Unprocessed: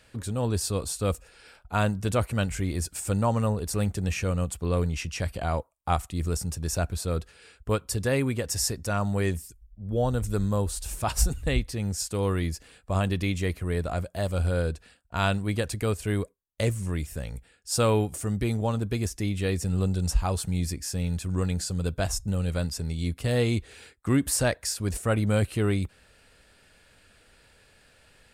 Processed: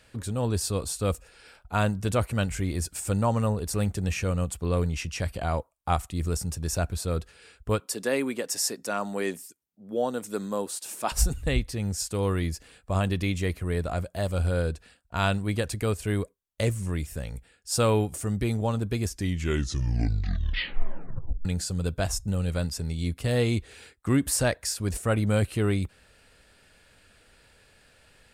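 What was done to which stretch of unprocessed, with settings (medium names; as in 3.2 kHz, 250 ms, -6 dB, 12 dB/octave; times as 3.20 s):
7.80–11.12 s: high-pass 220 Hz 24 dB/octave
19.05 s: tape stop 2.40 s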